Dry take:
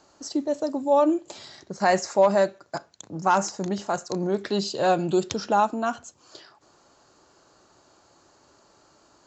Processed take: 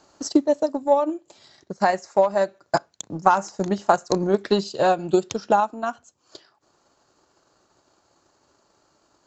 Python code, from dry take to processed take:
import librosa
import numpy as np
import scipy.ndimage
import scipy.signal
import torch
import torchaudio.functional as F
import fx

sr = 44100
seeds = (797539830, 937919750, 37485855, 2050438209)

y = fx.transient(x, sr, attack_db=9, sustain_db=-5)
y = fx.dynamic_eq(y, sr, hz=910.0, q=0.7, threshold_db=-28.0, ratio=4.0, max_db=3)
y = fx.rider(y, sr, range_db=5, speed_s=0.5)
y = F.gain(torch.from_numpy(y), -3.0).numpy()